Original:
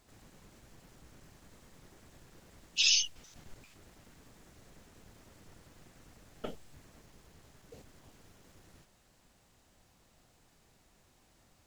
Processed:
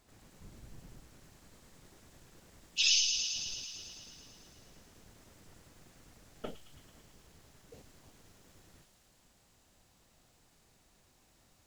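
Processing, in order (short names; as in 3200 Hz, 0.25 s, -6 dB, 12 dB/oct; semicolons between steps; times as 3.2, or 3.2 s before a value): 0.4–1 low shelf 260 Hz +10.5 dB; on a send: thin delay 0.11 s, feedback 75%, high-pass 3300 Hz, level -4 dB; on the sum: gain -1.5 dB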